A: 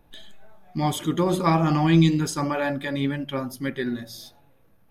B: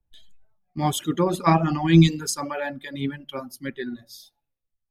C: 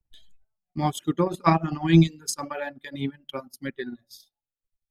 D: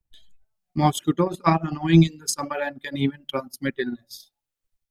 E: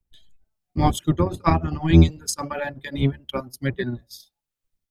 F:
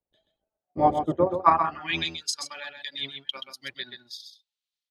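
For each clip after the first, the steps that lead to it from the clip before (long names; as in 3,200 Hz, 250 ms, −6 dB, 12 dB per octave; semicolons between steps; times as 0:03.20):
reverb reduction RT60 1.9 s; multiband upward and downward expander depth 70%
transient designer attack +4 dB, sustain −12 dB; level −3.5 dB
automatic gain control gain up to 6.5 dB
sub-octave generator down 1 octave, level +1 dB; level −1 dB
band-pass filter sweep 600 Hz → 3,800 Hz, 0:01.23–0:02.11; single-tap delay 129 ms −7.5 dB; level +6.5 dB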